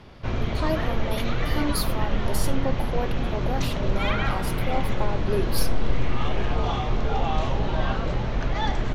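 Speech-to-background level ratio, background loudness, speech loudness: -4.0 dB, -28.0 LUFS, -32.0 LUFS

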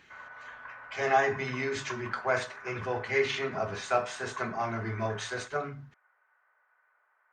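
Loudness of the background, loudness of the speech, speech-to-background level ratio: -45.0 LUFS, -31.5 LUFS, 13.5 dB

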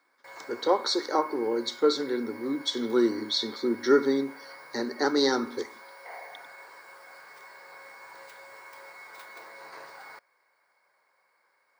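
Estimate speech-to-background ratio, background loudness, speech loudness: 19.0 dB, -46.0 LUFS, -27.0 LUFS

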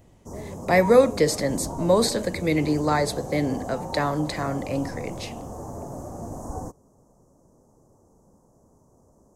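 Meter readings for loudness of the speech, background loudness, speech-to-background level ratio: -23.5 LUFS, -35.5 LUFS, 12.0 dB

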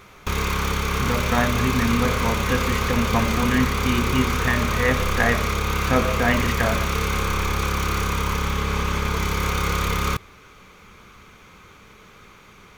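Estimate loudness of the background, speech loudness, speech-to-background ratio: -23.5 LUFS, -24.5 LUFS, -1.0 dB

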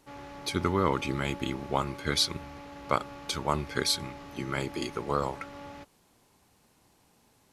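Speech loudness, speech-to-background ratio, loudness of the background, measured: -30.5 LUFS, 14.0 dB, -44.5 LUFS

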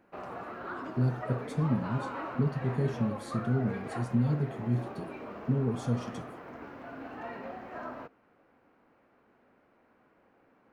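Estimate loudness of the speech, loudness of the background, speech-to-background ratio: -32.0 LUFS, -41.0 LUFS, 9.0 dB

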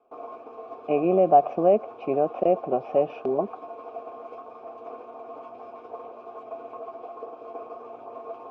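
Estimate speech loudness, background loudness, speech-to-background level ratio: -23.5 LUFS, -40.5 LUFS, 17.0 dB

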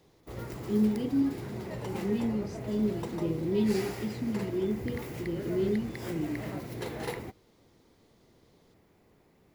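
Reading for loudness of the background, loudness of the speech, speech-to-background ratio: -39.5 LUFS, -32.0 LUFS, 7.5 dB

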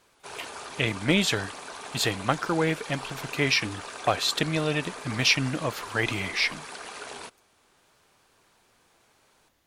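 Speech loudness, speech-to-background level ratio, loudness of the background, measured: -26.5 LUFS, 12.5 dB, -39.0 LUFS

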